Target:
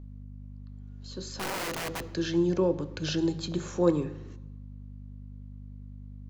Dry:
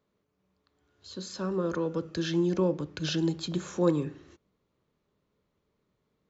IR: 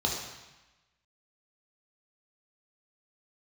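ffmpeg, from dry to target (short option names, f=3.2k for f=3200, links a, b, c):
-filter_complex "[0:a]aeval=exprs='val(0)+0.00794*(sin(2*PI*50*n/s)+sin(2*PI*2*50*n/s)/2+sin(2*PI*3*50*n/s)/3+sin(2*PI*4*50*n/s)/4+sin(2*PI*5*50*n/s)/5)':c=same,asettb=1/sr,asplit=3[a][b][c];[a]atrim=end=1.374[d];[b]atrim=start=1.37:end=2.14,asetpts=PTS-STARTPTS,afade=t=in:d=0.004:c=qsin,afade=t=out:st=0.766:d=0.004:c=qsin,aeval=exprs='(mod(26.6*val(0)+1,2)-1)/26.6':c=same[e];[c]atrim=start=2.136[f];[d][e]acrossfade=d=0.004:c1=hsin:c2=qsin[g];[g][f]acrossfade=d=0.004:c1=qsin:c2=hsin,asplit=2[h][i];[1:a]atrim=start_sample=2205,highshelf=f=6.1k:g=-11[j];[i][j]afir=irnorm=-1:irlink=0,volume=-20.5dB[k];[h][k]amix=inputs=2:normalize=0"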